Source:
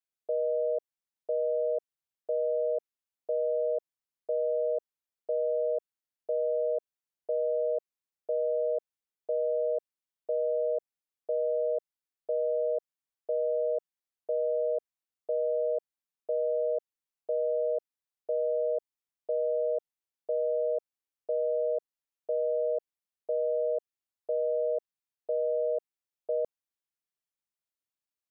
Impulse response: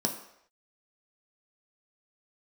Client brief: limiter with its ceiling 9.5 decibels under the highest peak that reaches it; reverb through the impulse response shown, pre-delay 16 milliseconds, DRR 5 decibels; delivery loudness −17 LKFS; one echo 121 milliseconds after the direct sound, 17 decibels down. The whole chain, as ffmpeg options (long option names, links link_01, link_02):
-filter_complex "[0:a]alimiter=level_in=8dB:limit=-24dB:level=0:latency=1,volume=-8dB,aecho=1:1:121:0.141,asplit=2[link_01][link_02];[1:a]atrim=start_sample=2205,adelay=16[link_03];[link_02][link_03]afir=irnorm=-1:irlink=0,volume=-11dB[link_04];[link_01][link_04]amix=inputs=2:normalize=0,volume=19.5dB"